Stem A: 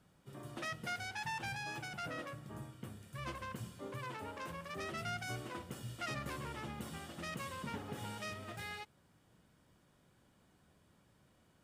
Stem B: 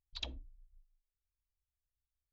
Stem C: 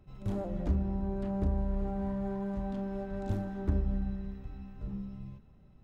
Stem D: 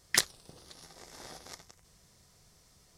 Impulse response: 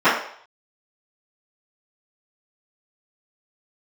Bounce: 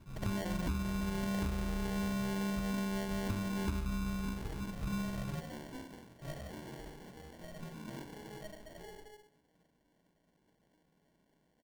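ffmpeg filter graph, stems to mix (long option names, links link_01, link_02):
-filter_complex "[0:a]bandreject=frequency=64.68:width_type=h:width=4,bandreject=frequency=129.36:width_type=h:width=4,bandreject=frequency=194.04:width_type=h:width=4,bandreject=frequency=258.72:width_type=h:width=4,bandreject=frequency=323.4:width_type=h:width=4,bandreject=frequency=388.08:width_type=h:width=4,bandreject=frequency=452.76:width_type=h:width=4,bandreject=frequency=517.44:width_type=h:width=4,bandreject=frequency=582.12:width_type=h:width=4,bandreject=frequency=646.8:width_type=h:width=4,bandreject=frequency=711.48:width_type=h:width=4,bandreject=frequency=776.16:width_type=h:width=4,bandreject=frequency=840.84:width_type=h:width=4,bandreject=frequency=905.52:width_type=h:width=4,bandreject=frequency=970.2:width_type=h:width=4,bandreject=frequency=1034.88:width_type=h:width=4,bandreject=frequency=1099.56:width_type=h:width=4,bandreject=frequency=1164.24:width_type=h:width=4,bandreject=frequency=1228.92:width_type=h:width=4,bandreject=frequency=1293.6:width_type=h:width=4,bandreject=frequency=1358.28:width_type=h:width=4,bandreject=frequency=1422.96:width_type=h:width=4,bandreject=frequency=1487.64:width_type=h:width=4,bandreject=frequency=1552.32:width_type=h:width=4,bandreject=frequency=1617:width_type=h:width=4,bandreject=frequency=1681.68:width_type=h:width=4,bandreject=frequency=1746.36:width_type=h:width=4,bandreject=frequency=1811.04:width_type=h:width=4,bandreject=frequency=1875.72:width_type=h:width=4,flanger=delay=5.8:depth=3.4:regen=-76:speed=1.5:shape=sinusoidal,adelay=200,volume=-16dB,asplit=2[link_01][link_02];[link_02]volume=-6dB[link_03];[1:a]volume=-0.5dB[link_04];[2:a]equalizer=frequency=200:width=0.6:gain=6,volume=-1dB[link_05];[3:a]adelay=1200,volume=-16.5dB[link_06];[4:a]atrim=start_sample=2205[link_07];[link_03][link_07]afir=irnorm=-1:irlink=0[link_08];[link_01][link_04][link_05][link_06][link_08]amix=inputs=5:normalize=0,acrusher=samples=35:mix=1:aa=0.000001,acompressor=threshold=-32dB:ratio=6"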